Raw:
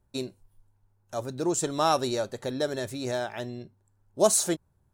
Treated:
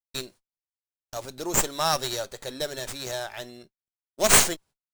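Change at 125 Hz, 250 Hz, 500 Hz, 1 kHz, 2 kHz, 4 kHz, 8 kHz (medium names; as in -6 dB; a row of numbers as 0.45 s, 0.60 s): -1.5 dB, -5.0 dB, -3.0 dB, +0.5 dB, +9.0 dB, +7.0 dB, +5.5 dB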